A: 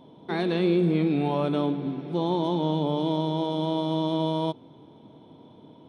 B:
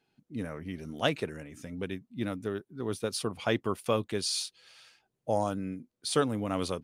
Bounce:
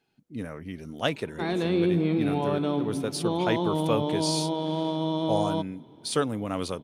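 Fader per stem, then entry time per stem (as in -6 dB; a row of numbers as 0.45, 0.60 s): -1.5, +1.0 dB; 1.10, 0.00 s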